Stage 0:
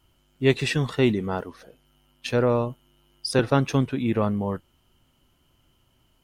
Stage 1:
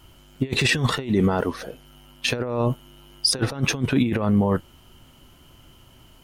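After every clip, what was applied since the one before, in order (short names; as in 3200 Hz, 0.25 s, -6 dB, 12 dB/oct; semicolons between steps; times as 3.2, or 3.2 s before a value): negative-ratio compressor -27 dBFS, ratio -0.5; limiter -18.5 dBFS, peak gain reduction 8.5 dB; gain +8.5 dB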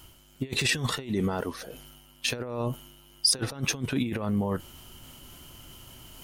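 reverse; upward compressor, threshold -31 dBFS; reverse; high shelf 4500 Hz +10 dB; gain -8 dB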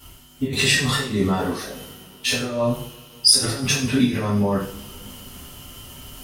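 two-slope reverb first 0.47 s, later 3.6 s, from -27 dB, DRR -9.5 dB; gain -2 dB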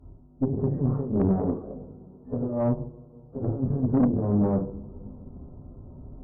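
Gaussian blur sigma 13 samples; tube stage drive 19 dB, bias 0.6; gain +3.5 dB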